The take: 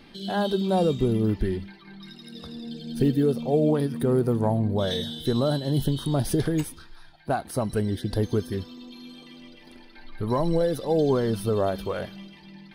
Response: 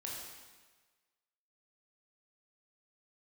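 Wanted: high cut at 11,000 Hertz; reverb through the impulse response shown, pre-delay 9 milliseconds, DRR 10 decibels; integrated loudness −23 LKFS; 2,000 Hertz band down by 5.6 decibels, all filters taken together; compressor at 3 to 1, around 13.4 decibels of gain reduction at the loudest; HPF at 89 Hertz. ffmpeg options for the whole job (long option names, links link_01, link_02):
-filter_complex "[0:a]highpass=89,lowpass=11000,equalizer=frequency=2000:width_type=o:gain=-8,acompressor=threshold=-37dB:ratio=3,asplit=2[link_01][link_02];[1:a]atrim=start_sample=2205,adelay=9[link_03];[link_02][link_03]afir=irnorm=-1:irlink=0,volume=-9.5dB[link_04];[link_01][link_04]amix=inputs=2:normalize=0,volume=15dB"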